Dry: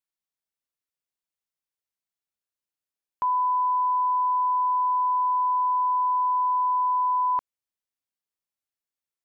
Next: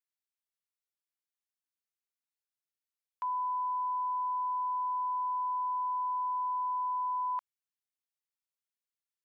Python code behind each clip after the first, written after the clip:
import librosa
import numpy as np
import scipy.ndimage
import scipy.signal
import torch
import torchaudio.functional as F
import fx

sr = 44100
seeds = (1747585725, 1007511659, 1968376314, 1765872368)

y = scipy.signal.sosfilt(scipy.signal.butter(2, 1100.0, 'highpass', fs=sr, output='sos'), x)
y = y * librosa.db_to_amplitude(-5.5)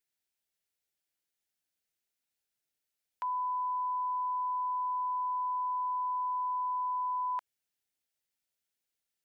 y = fx.peak_eq(x, sr, hz=1100.0, db=-12.5, octaves=0.3)
y = y * librosa.db_to_amplitude(6.5)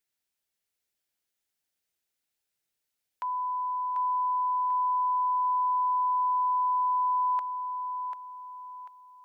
y = fx.echo_feedback(x, sr, ms=742, feedback_pct=36, wet_db=-6.5)
y = y * librosa.db_to_amplitude(2.0)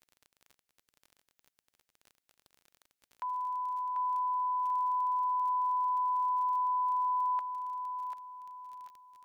y = fx.dmg_crackle(x, sr, seeds[0], per_s=31.0, level_db=-40.0)
y = y * librosa.db_to_amplitude(-4.0)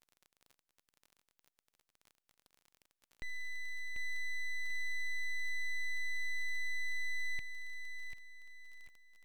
y = np.abs(x)
y = y * librosa.db_to_amplitude(-3.5)